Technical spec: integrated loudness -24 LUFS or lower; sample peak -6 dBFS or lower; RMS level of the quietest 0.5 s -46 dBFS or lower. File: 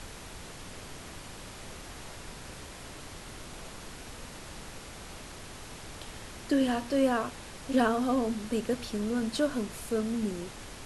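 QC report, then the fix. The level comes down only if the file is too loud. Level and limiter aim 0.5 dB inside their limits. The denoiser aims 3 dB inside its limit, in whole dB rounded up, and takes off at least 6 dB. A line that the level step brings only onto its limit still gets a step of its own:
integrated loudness -30.5 LUFS: pass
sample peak -13.5 dBFS: pass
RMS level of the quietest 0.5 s -44 dBFS: fail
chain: noise reduction 6 dB, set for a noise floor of -44 dBFS

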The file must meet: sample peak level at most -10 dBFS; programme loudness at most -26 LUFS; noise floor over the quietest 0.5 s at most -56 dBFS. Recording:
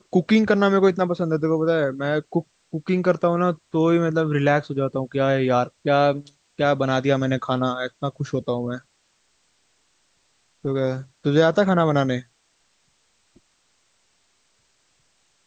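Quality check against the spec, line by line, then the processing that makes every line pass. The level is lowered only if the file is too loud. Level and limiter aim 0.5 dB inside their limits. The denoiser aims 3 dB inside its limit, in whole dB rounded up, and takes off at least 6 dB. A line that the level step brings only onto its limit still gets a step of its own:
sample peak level -5.5 dBFS: fail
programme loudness -21.5 LUFS: fail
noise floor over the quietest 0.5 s -66 dBFS: pass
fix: trim -5 dB

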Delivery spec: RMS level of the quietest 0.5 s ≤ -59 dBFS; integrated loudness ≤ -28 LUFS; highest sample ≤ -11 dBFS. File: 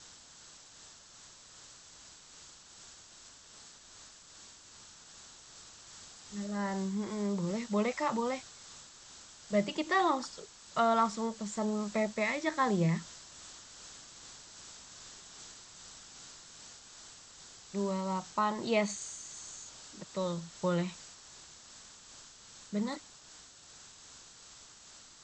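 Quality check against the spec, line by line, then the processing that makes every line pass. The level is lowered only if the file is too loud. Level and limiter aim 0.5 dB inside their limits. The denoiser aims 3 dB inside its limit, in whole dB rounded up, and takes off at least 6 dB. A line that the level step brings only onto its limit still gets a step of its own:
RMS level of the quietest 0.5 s -55 dBFS: fail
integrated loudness -33.5 LUFS: pass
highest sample -16.5 dBFS: pass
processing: noise reduction 7 dB, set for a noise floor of -55 dBFS

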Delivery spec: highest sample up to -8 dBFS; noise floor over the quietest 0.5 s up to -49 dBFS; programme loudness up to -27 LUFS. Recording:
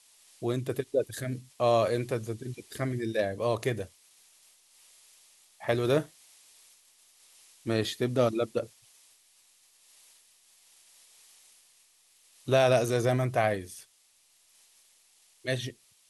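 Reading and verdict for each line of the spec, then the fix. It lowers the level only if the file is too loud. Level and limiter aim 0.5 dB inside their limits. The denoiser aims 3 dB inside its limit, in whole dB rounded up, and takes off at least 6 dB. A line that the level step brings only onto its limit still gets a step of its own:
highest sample -10.5 dBFS: pass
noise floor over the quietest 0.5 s -65 dBFS: pass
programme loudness -29.5 LUFS: pass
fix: none needed

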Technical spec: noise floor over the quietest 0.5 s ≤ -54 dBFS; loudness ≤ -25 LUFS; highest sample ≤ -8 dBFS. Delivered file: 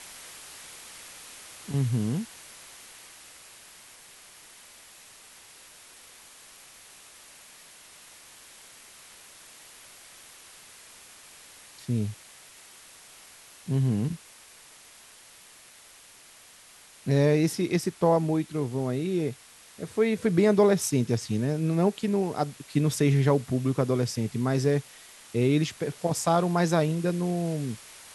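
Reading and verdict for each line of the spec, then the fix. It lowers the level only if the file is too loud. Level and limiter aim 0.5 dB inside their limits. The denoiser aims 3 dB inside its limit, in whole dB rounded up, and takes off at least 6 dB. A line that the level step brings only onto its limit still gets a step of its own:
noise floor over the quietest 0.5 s -53 dBFS: fail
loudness -26.5 LUFS: pass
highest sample -9.5 dBFS: pass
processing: noise reduction 6 dB, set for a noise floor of -53 dBFS

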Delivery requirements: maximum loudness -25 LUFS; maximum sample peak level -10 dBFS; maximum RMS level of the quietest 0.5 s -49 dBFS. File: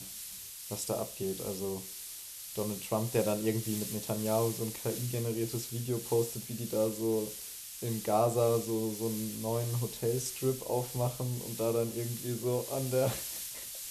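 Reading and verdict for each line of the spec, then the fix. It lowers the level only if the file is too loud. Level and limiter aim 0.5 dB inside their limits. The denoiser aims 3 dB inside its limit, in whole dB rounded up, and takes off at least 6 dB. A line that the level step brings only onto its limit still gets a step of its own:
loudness -33.5 LUFS: pass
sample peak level -16.0 dBFS: pass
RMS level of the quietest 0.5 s -45 dBFS: fail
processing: noise reduction 7 dB, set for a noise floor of -45 dBFS

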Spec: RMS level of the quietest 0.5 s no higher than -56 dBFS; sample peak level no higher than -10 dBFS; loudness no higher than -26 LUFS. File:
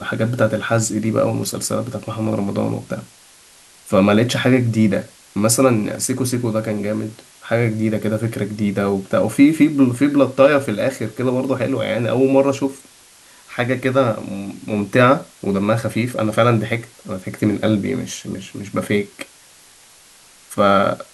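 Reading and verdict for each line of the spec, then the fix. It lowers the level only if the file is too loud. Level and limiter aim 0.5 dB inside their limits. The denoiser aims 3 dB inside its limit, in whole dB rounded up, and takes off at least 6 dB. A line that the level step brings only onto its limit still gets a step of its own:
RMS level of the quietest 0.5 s -48 dBFS: fail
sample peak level -1.5 dBFS: fail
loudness -18.5 LUFS: fail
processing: noise reduction 6 dB, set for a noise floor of -48 dBFS; trim -8 dB; peak limiter -10.5 dBFS

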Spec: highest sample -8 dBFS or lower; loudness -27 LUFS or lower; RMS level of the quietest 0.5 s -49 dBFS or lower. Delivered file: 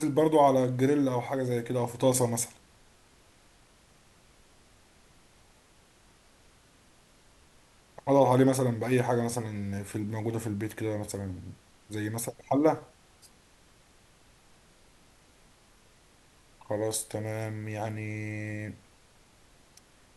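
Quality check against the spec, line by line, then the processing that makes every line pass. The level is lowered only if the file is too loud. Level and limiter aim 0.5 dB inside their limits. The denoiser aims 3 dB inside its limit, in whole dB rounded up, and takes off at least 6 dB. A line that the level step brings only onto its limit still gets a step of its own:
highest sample -10.0 dBFS: pass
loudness -29.0 LUFS: pass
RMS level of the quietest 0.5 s -60 dBFS: pass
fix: none needed

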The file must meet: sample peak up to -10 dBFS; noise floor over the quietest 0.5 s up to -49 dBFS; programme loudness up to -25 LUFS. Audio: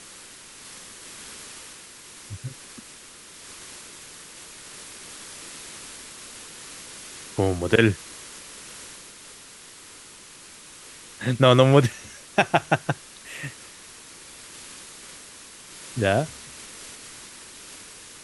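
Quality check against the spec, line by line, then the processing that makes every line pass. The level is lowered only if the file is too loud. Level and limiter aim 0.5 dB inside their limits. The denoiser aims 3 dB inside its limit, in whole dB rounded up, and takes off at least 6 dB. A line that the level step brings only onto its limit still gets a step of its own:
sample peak -2.5 dBFS: fail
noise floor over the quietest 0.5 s -46 dBFS: fail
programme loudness -23.5 LUFS: fail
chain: noise reduction 6 dB, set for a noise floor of -46 dBFS; trim -2 dB; peak limiter -10.5 dBFS

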